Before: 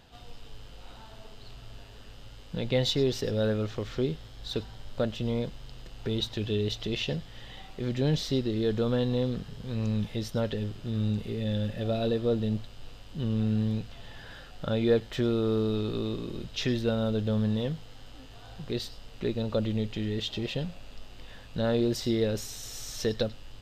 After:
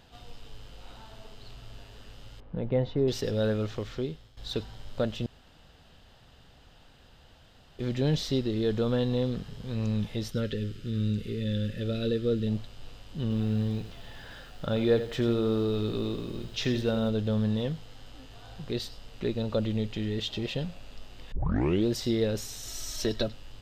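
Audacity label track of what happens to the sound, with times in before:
2.400000	3.080000	low-pass 1.2 kHz
3.740000	4.370000	fade out, to -13 dB
5.260000	7.790000	room tone
10.310000	12.470000	high-order bell 820 Hz -15.5 dB 1 oct
13.220000	17.090000	bit-crushed delay 85 ms, feedback 35%, word length 9-bit, level -11 dB
21.320000	21.320000	tape start 0.54 s
22.670000	23.280000	comb 3.1 ms

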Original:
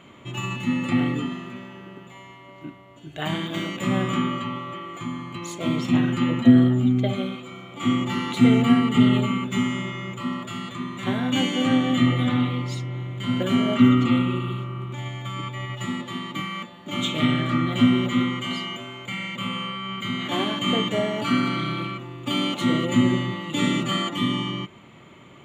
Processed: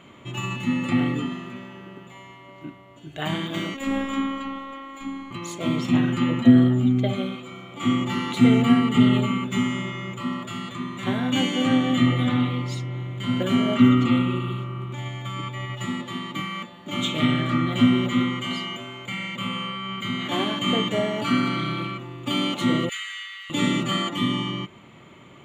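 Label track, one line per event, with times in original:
3.740000	5.310000	robot voice 272 Hz
22.890000	23.500000	steep high-pass 1.4 kHz 48 dB/octave

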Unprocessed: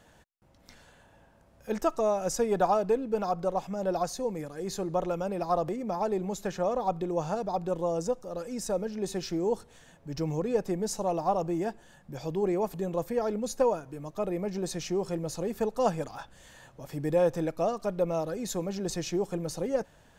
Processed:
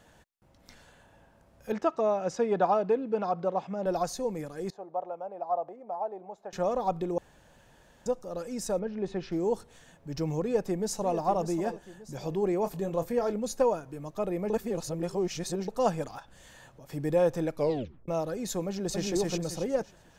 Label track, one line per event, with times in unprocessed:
1.720000	3.860000	band-pass 130–3700 Hz
4.700000	6.530000	band-pass filter 740 Hz, Q 3
7.180000	8.060000	room tone
8.790000	9.320000	low-pass 2.6 kHz
10.420000	11.170000	echo throw 590 ms, feedback 40%, level -10.5 dB
12.630000	13.340000	doubling 25 ms -10 dB
14.500000	15.680000	reverse
16.190000	16.900000	compression 4:1, threshold -47 dBFS
17.560000	17.560000	tape stop 0.52 s
18.670000	19.100000	echo throw 270 ms, feedback 30%, level -0.5 dB

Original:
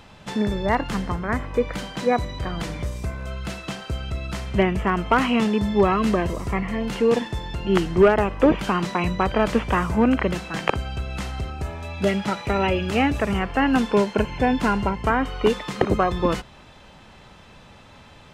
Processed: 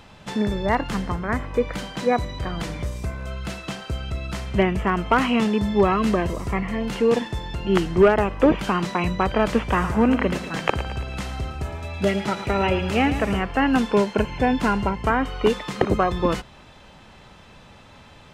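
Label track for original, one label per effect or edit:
9.650000	13.410000	feedback delay 111 ms, feedback 55%, level -12 dB

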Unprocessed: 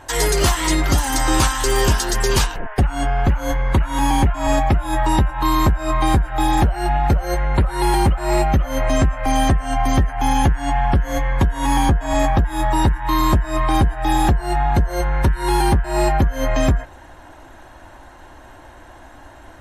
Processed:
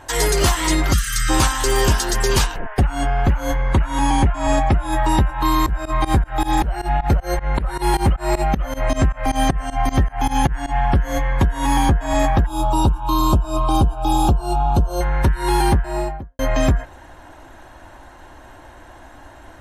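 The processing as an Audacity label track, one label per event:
0.930000	1.300000	spectral selection erased 230–1100 Hz
3.560000	4.920000	Chebyshev low-pass 11 kHz, order 5
5.660000	10.850000	volume shaper 156 bpm, dips per beat 2, -22 dB, release 119 ms
12.460000	15.010000	Butterworth band-stop 1.9 kHz, Q 1.3
15.700000	16.390000	studio fade out

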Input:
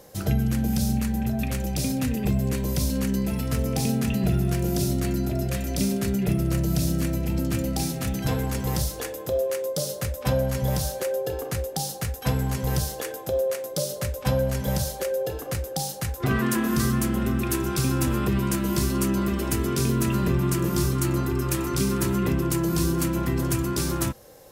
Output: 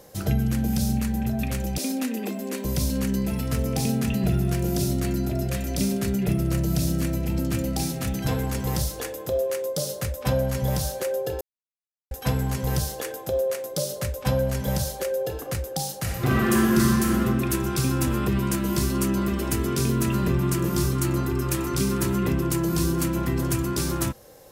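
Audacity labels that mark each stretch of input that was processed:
1.780000	2.650000	brick-wall FIR high-pass 200 Hz
11.410000	12.110000	mute
15.970000	17.190000	reverb throw, RT60 1.7 s, DRR -1 dB

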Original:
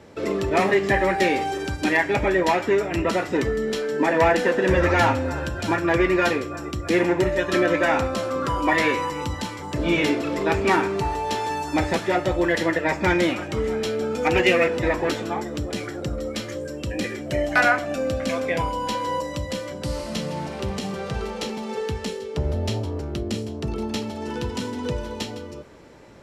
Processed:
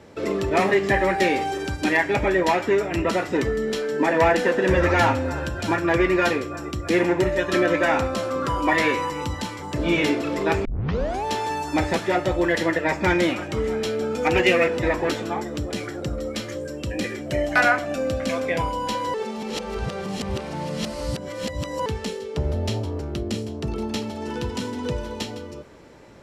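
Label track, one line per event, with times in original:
10.650000	10.650000	tape start 0.59 s
19.140000	21.860000	reverse

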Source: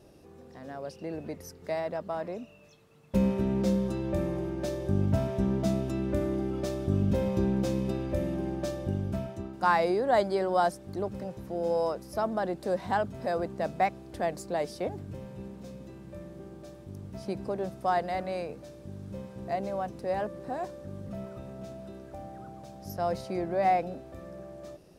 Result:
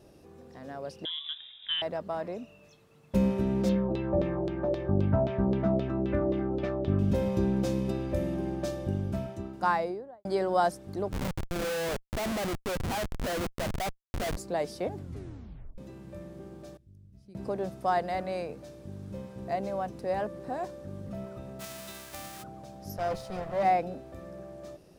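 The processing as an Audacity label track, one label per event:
1.050000	1.820000	frequency inversion carrier 3.7 kHz
3.690000	6.990000	LFO low-pass saw down 3.8 Hz 490–3900 Hz
9.500000	10.250000	studio fade out
11.120000	14.370000	Schmitt trigger flips at -35 dBFS
14.990000	14.990000	tape stop 0.79 s
16.770000	17.350000	amplifier tone stack bass-middle-treble 10-0-1
21.590000	22.420000	formants flattened exponent 0.3
22.980000	23.630000	comb filter that takes the minimum delay 1.6 ms

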